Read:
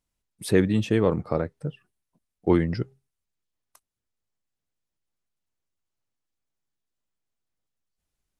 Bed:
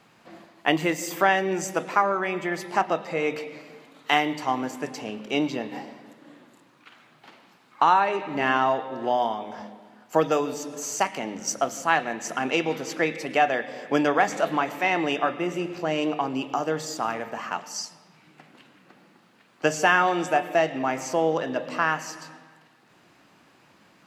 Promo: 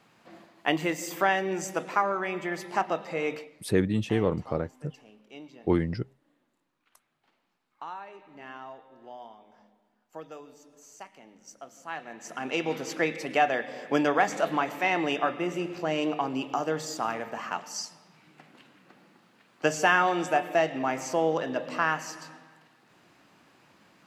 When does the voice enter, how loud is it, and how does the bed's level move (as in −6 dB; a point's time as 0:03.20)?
3.20 s, −4.0 dB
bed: 0:03.34 −4 dB
0:03.62 −21 dB
0:11.58 −21 dB
0:12.73 −2.5 dB